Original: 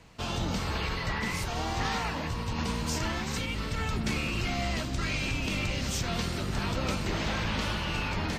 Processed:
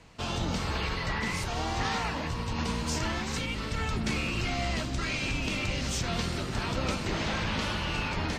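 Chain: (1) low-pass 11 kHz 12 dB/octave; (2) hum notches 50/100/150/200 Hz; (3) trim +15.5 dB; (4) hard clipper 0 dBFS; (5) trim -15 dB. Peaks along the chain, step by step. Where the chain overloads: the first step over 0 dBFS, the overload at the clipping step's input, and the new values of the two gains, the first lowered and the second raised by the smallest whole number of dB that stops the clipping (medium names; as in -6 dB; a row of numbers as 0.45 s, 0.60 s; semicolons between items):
-20.0 dBFS, -19.5 dBFS, -4.0 dBFS, -4.0 dBFS, -19.0 dBFS; nothing clips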